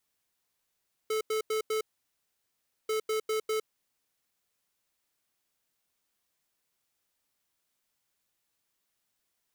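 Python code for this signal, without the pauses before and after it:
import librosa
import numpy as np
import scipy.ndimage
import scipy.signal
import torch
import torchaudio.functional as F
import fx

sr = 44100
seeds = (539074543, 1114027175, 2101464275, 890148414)

y = fx.beep_pattern(sr, wave='square', hz=435.0, on_s=0.11, off_s=0.09, beeps=4, pause_s=1.08, groups=2, level_db=-29.5)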